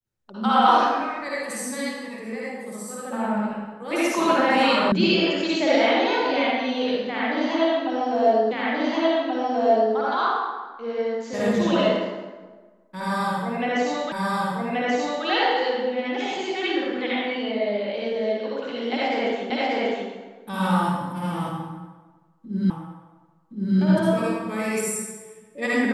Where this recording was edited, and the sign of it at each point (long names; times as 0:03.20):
0:04.92: cut off before it has died away
0:08.51: the same again, the last 1.43 s
0:14.12: the same again, the last 1.13 s
0:19.50: the same again, the last 0.59 s
0:22.70: the same again, the last 1.07 s